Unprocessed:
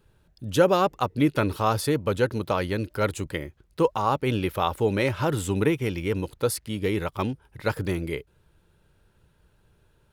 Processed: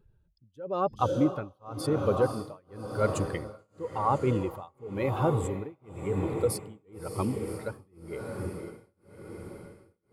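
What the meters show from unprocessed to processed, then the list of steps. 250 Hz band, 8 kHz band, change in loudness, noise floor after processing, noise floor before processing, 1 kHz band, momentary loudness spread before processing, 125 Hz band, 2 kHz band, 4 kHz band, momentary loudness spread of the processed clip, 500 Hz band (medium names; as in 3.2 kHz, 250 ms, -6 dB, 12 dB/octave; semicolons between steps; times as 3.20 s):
-5.0 dB, -6.0 dB, -5.0 dB, -70 dBFS, -64 dBFS, -5.0 dB, 8 LU, -4.0 dB, -11.5 dB, -12.0 dB, 17 LU, -5.0 dB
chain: spectral contrast enhancement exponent 1.6; echo that smears into a reverb 578 ms, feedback 62%, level -8 dB; tremolo 0.95 Hz, depth 99%; trim -1 dB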